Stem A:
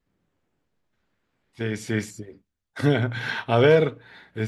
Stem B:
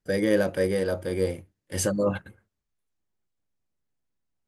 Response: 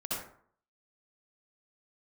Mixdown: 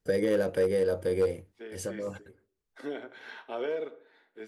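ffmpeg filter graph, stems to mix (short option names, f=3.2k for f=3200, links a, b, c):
-filter_complex "[0:a]highpass=f=310:w=0.5412,highpass=f=310:w=1.3066,tiltshelf=f=740:g=3.5,flanger=delay=4.8:depth=4.3:regen=-71:speed=0.59:shape=sinusoidal,volume=-10dB,asplit=3[a][b][c];[b]volume=-20.5dB[d];[1:a]equalizer=f=460:t=o:w=0.27:g=9.5,volume=12.5dB,asoftclip=hard,volume=-12.5dB,volume=2dB[e];[c]apad=whole_len=197541[f];[e][f]sidechaincompress=threshold=-57dB:ratio=8:attack=41:release=771[g];[2:a]atrim=start_sample=2205[h];[d][h]afir=irnorm=-1:irlink=0[i];[a][g][i]amix=inputs=3:normalize=0,acompressor=threshold=-30dB:ratio=2"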